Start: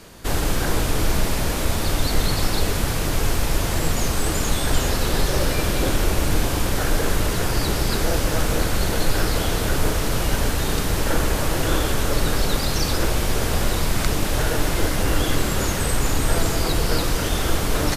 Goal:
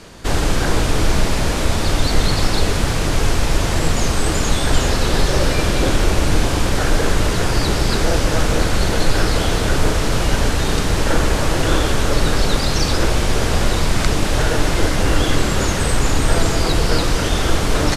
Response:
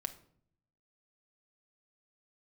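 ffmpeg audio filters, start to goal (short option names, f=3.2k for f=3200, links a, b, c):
-af "lowpass=8.3k,volume=4.5dB"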